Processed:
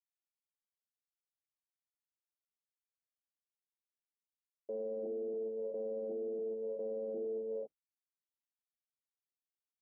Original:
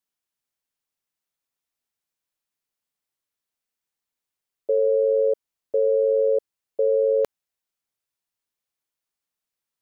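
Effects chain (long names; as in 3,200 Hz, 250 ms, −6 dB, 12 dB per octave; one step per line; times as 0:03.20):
sub-octave generator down 1 octave, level −5 dB
leveller curve on the samples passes 1
reverb whose tail is shaped and stops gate 430 ms rising, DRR 3.5 dB
noise gate with hold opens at −9 dBFS
tube saturation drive 34 dB, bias 0.35
elliptic band-pass filter 200–710 Hz, stop band 50 dB
treble cut that deepens with the level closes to 430 Hz, closed at −36.5 dBFS
brickwall limiter −38 dBFS, peak gain reduction 5.5 dB
speech leveller 0.5 s
level +5 dB
Opus 64 kbit/s 48,000 Hz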